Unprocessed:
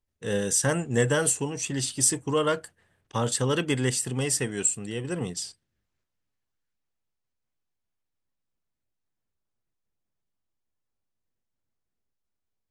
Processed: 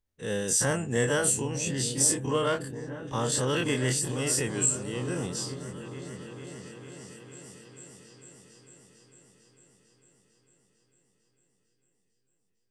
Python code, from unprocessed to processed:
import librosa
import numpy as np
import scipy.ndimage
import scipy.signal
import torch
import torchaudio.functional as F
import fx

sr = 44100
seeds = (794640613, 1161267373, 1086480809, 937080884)

y = fx.spec_dilate(x, sr, span_ms=60)
y = fx.echo_opening(y, sr, ms=450, hz=200, octaves=1, feedback_pct=70, wet_db=-6)
y = F.gain(torch.from_numpy(y), -5.5).numpy()